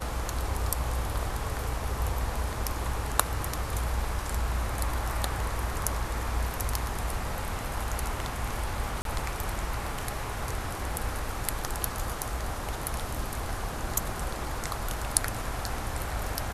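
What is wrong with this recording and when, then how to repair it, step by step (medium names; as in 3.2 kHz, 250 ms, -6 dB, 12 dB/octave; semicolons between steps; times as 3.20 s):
9.02–9.05 s: dropout 32 ms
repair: interpolate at 9.02 s, 32 ms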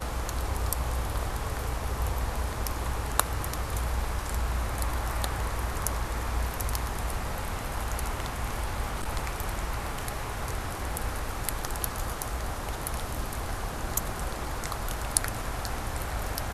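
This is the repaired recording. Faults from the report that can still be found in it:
nothing left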